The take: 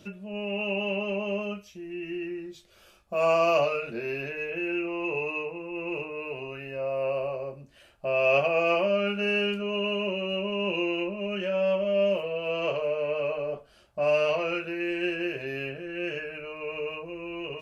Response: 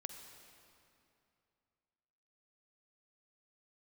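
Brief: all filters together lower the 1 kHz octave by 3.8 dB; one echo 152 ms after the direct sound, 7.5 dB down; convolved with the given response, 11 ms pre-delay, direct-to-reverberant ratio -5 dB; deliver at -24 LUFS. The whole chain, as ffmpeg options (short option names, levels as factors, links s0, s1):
-filter_complex "[0:a]equalizer=f=1000:t=o:g=-5.5,aecho=1:1:152:0.422,asplit=2[s0][s1];[1:a]atrim=start_sample=2205,adelay=11[s2];[s1][s2]afir=irnorm=-1:irlink=0,volume=2.51[s3];[s0][s3]amix=inputs=2:normalize=0,volume=0.944"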